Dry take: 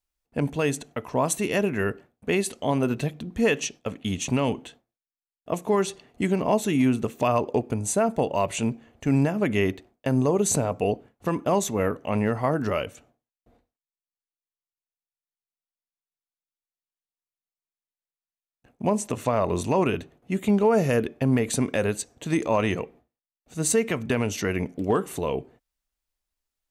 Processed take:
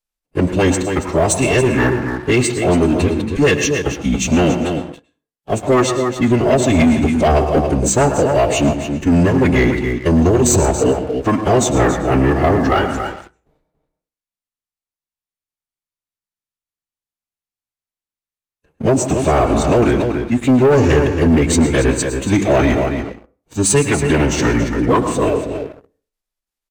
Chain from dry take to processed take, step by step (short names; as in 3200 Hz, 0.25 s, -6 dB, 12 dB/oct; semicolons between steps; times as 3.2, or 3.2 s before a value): formant-preserving pitch shift -8 st; outdoor echo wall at 48 m, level -8 dB; reverb RT60 0.40 s, pre-delay 97 ms, DRR 9.5 dB; sample leveller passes 2; gain +4.5 dB